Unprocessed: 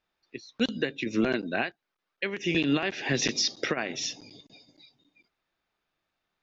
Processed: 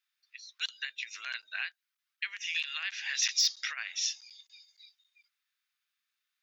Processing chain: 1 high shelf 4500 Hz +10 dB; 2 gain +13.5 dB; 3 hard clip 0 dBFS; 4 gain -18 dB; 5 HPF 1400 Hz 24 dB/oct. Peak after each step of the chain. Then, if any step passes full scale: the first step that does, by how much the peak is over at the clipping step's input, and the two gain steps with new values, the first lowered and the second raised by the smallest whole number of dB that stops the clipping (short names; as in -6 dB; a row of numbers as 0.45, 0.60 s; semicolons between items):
-9.5, +4.0, 0.0, -18.0, -15.5 dBFS; step 2, 4.0 dB; step 2 +9.5 dB, step 4 -14 dB